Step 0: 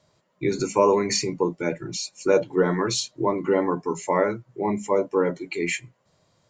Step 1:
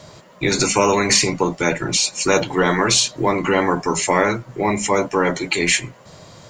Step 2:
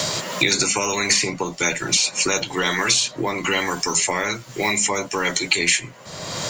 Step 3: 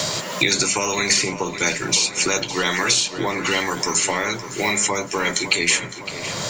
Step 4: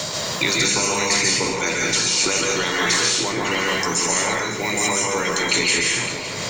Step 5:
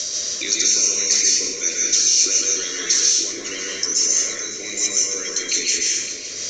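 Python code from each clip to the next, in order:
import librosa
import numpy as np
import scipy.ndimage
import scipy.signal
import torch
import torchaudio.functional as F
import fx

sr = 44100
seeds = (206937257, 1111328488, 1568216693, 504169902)

y1 = fx.spectral_comp(x, sr, ratio=2.0)
y1 = y1 * 10.0 ** (4.5 / 20.0)
y2 = fx.high_shelf(y1, sr, hz=2100.0, db=11.5)
y2 = fx.band_squash(y2, sr, depth_pct=100)
y2 = y2 * 10.0 ** (-8.5 / 20.0)
y3 = fx.echo_filtered(y2, sr, ms=560, feedback_pct=57, hz=5000.0, wet_db=-11.0)
y4 = fx.rev_plate(y3, sr, seeds[0], rt60_s=0.74, hf_ratio=0.95, predelay_ms=120, drr_db=-2.0)
y4 = fx.sustainer(y4, sr, db_per_s=30.0)
y4 = y4 * 10.0 ** (-3.5 / 20.0)
y5 = fx.lowpass_res(y4, sr, hz=6000.0, q=8.6)
y5 = fx.fixed_phaser(y5, sr, hz=360.0, stages=4)
y5 = y5 * 10.0 ** (-7.5 / 20.0)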